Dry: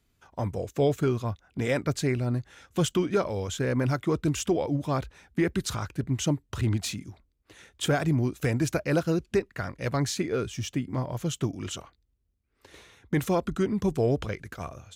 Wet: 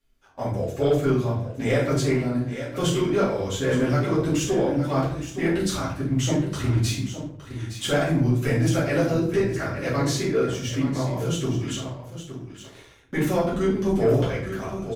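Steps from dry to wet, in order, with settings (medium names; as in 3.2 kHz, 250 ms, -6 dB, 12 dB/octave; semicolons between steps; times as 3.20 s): bass shelf 190 Hz -6.5 dB; hum notches 50/100/150 Hz; delay 866 ms -11 dB; simulated room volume 80 m³, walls mixed, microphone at 2.3 m; waveshaping leveller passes 1; bass shelf 73 Hz +9 dB; trim -9 dB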